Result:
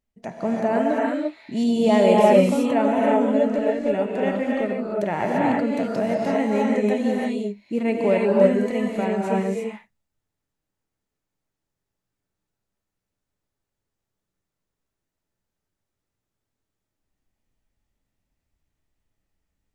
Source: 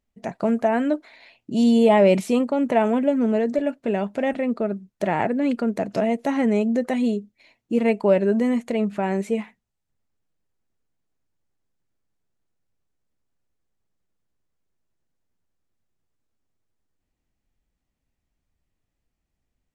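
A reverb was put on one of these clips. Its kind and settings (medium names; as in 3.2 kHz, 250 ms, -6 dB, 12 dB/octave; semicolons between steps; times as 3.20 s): gated-style reverb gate 370 ms rising, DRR -3.5 dB; trim -3.5 dB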